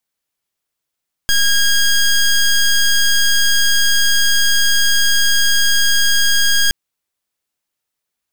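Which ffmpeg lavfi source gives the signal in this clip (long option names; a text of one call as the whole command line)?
ffmpeg -f lavfi -i "aevalsrc='0.237*(2*lt(mod(1630*t,1),0.14)-1)':duration=5.42:sample_rate=44100" out.wav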